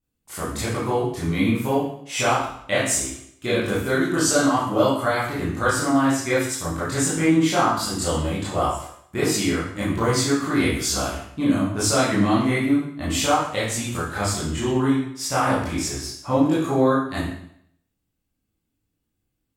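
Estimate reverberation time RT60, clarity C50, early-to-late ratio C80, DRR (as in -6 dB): 0.70 s, 1.0 dB, 5.0 dB, -9.5 dB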